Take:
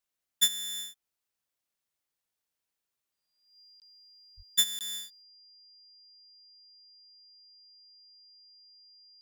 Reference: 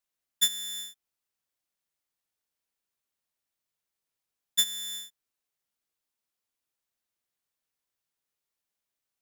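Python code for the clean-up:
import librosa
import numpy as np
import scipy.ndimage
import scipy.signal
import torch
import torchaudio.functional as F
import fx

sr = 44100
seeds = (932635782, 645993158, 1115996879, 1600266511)

y = fx.notch(x, sr, hz=4800.0, q=30.0)
y = fx.fix_deplosive(y, sr, at_s=(4.36,))
y = fx.fix_interpolate(y, sr, at_s=(3.8, 4.79), length_ms=18.0)
y = fx.gain(y, sr, db=fx.steps((0.0, 0.0), (5.22, 9.5)))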